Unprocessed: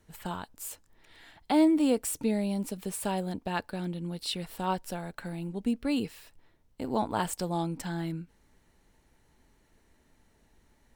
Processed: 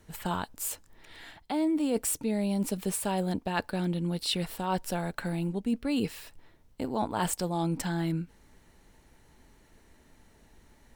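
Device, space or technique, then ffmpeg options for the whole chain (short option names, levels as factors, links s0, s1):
compression on the reversed sound: -af "areverse,acompressor=threshold=0.0282:ratio=10,areverse,volume=2"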